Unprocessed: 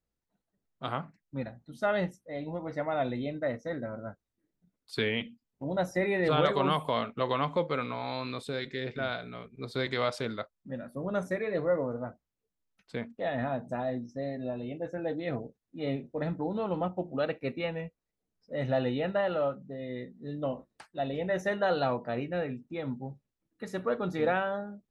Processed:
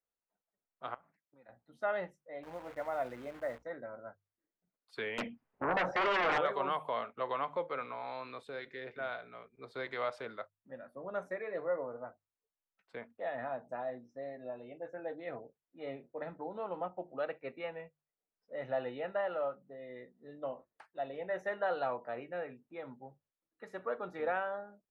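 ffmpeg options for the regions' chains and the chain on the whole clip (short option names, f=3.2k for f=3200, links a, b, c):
-filter_complex "[0:a]asettb=1/sr,asplit=3[a][b][c];[a]atrim=end=0.944[d];[b]atrim=start=0.94:end=1.49,asetpts=PTS-STARTPTS,afade=t=in:d=0.004:c=qsin,afade=t=out:st=0.546:d=0.004:c=qsin,acompressor=threshold=-49dB:ratio=6:attack=3.2:release=140:knee=1:detection=peak,highpass=130,lowpass=7.1k[e];[c]atrim=start=1.486[f];[d][e]acrossfade=d=0.004:c1=hsin:c2=qsin[g];[g][f]acrossfade=d=0.004:c1=qsin:c2=hsin,asettb=1/sr,asplit=3[h][i][j];[h]atrim=end=2.434[k];[i]atrim=start=2.43:end=3.63,asetpts=PTS-STARTPTS,afade=t=in:d=0.004:c=qsin,afade=t=out:st=1.196:d=0.004:c=qsin,lowpass=2.9k,acrusher=bits=8:dc=4:mix=0:aa=0.000001,aeval=exprs='val(0)+0.00398*(sin(2*PI*60*n/s)+sin(2*PI*2*60*n/s)/2+sin(2*PI*3*60*n/s)/3+sin(2*PI*4*60*n/s)/4+sin(2*PI*5*60*n/s)/5)':c=same[l];[j]atrim=start=3.626[m];[k][l]acrossfade=d=0.004:c1=hsin:c2=qsin[n];[n][m]acrossfade=d=0.004:c1=qsin:c2=hsin,asettb=1/sr,asplit=3[o][p][q];[o]atrim=end=5.184[r];[p]atrim=start=5.18:end=6.38,asetpts=PTS-STARTPTS,afade=t=in:d=0.004:c=qsin,afade=t=out:st=1.196:d=0.004:c=qsin,lowpass=2.2k,acompressor=threshold=-30dB:ratio=3:attack=3.2:release=140:knee=1:detection=peak,aeval=exprs='0.106*sin(PI/2*5.62*val(0)/0.106)':c=same[s];[q]atrim=start=6.376[t];[r][s]acrossfade=d=0.004:c1=hsin:c2=qsin[u];[u][t]acrossfade=d=0.004:c1=qsin:c2=hsin,acrossover=split=430 2400:gain=0.178 1 0.2[v][w][x];[v][w][x]amix=inputs=3:normalize=0,bandreject=f=50:t=h:w=6,bandreject=f=100:t=h:w=6,bandreject=f=150:t=h:w=6,volume=-4dB"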